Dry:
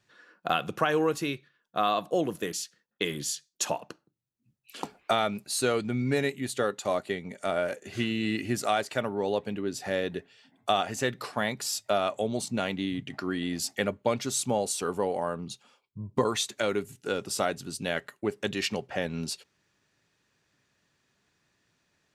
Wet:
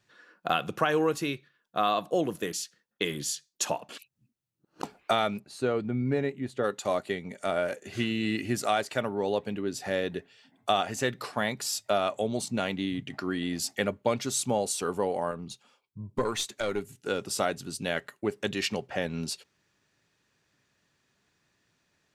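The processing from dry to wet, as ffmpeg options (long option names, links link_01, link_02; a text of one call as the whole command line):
ffmpeg -i in.wav -filter_complex "[0:a]asplit=3[link_01][link_02][link_03];[link_01]afade=type=out:start_time=5.38:duration=0.02[link_04];[link_02]lowpass=frequency=1000:poles=1,afade=type=in:start_time=5.38:duration=0.02,afade=type=out:start_time=6.63:duration=0.02[link_05];[link_03]afade=type=in:start_time=6.63:duration=0.02[link_06];[link_04][link_05][link_06]amix=inputs=3:normalize=0,asettb=1/sr,asplit=3[link_07][link_08][link_09];[link_07]atrim=end=15.314[link_10];[link_08]atrim=start=15.31:end=17.07,asetpts=PTS-STARTPTS,afade=type=in:duration=0.004:curve=qsin,afade=type=out:start_time=1.756:duration=0.004:curve=qsin,aeval=exprs='(tanh(6.31*val(0)+0.5)-tanh(0.5))/6.31':channel_layout=same[link_11];[link_09]atrim=start=17.066[link_12];[link_10][link_11]acrossfade=duration=0.004:curve1=hsin:curve2=qsin[link_13];[link_13][link_12]acrossfade=duration=0.004:curve1=qsin:curve2=hsin,asplit=3[link_14][link_15][link_16];[link_14]atrim=end=3.892[link_17];[link_15]atrim=start=3.888:end=4.832,asetpts=PTS-STARTPTS,areverse[link_18];[link_16]atrim=start=4.828[link_19];[link_17][link_18]acrossfade=duration=0.004:curve1=hsin:curve2=hsin[link_20];[link_20][link_19]acrossfade=duration=0.004:curve1=hsin:curve2=hsin" out.wav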